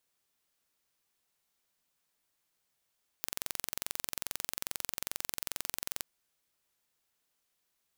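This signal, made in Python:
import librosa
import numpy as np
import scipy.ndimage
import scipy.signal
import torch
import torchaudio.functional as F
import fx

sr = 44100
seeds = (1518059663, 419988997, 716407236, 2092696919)

y = 10.0 ** (-7.0 / 20.0) * (np.mod(np.arange(round(2.8 * sr)), round(sr / 22.4)) == 0)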